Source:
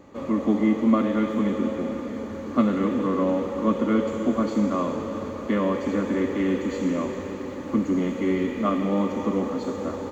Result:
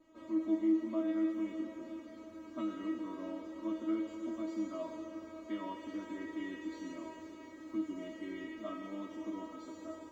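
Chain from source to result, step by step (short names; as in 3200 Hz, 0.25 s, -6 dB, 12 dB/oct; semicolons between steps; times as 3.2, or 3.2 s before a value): resonator 320 Hz, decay 0.28 s, harmonics all, mix 100%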